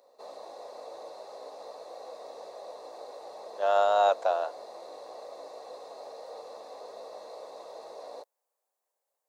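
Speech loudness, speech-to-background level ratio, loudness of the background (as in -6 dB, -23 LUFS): -26.0 LUFS, 18.5 dB, -44.5 LUFS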